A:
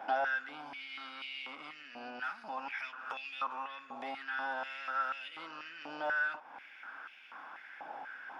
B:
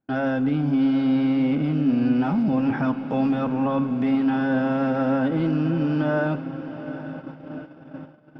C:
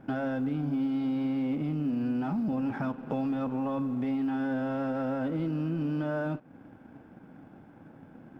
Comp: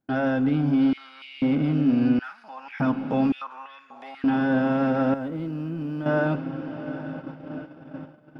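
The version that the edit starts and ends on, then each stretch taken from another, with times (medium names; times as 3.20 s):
B
0.93–1.42 s: from A
2.19–2.80 s: from A
3.32–4.24 s: from A
5.14–6.06 s: from C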